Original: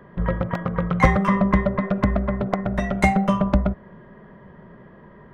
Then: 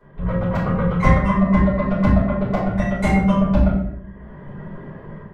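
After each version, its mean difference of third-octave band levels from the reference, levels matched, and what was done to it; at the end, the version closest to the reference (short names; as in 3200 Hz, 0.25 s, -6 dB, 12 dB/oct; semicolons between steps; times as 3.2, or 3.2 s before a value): 4.0 dB: reverb removal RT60 0.94 s; AGC gain up to 11.5 dB; shoebox room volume 140 m³, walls mixed, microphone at 4.9 m; gain -15.5 dB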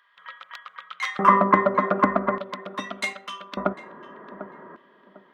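8.5 dB: LFO high-pass square 0.42 Hz 300–3500 Hz; bell 1200 Hz +13.5 dB 1.2 oct; on a send: tape echo 0.748 s, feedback 31%, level -12 dB, low-pass 1200 Hz; on the sum: gain -3.5 dB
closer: first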